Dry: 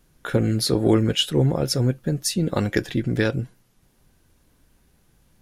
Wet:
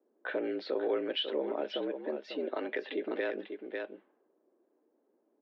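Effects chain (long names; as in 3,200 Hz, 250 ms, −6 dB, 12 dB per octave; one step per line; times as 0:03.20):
single-tap delay 546 ms −11 dB
in parallel at +1 dB: downward compressor, threshold −32 dBFS, peak gain reduction 17.5 dB
on the sum: brickwall limiter −12.5 dBFS, peak gain reduction 8 dB
low-pass that shuts in the quiet parts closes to 420 Hz, open at −21.5 dBFS
single-sideband voice off tune +74 Hz 250–3,400 Hz
level −8.5 dB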